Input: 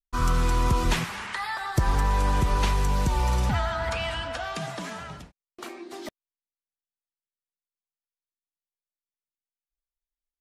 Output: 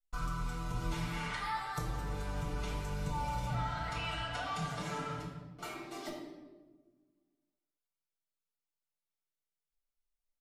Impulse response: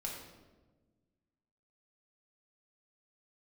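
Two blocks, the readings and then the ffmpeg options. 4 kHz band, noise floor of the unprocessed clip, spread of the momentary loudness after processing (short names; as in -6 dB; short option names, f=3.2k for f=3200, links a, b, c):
-9.5 dB, under -85 dBFS, 8 LU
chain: -filter_complex "[0:a]aecho=1:1:6.8:0.78,acompressor=threshold=-31dB:ratio=6[a];[1:a]atrim=start_sample=2205,asetrate=43218,aresample=44100[b];[a][b]afir=irnorm=-1:irlink=0,volume=-4dB"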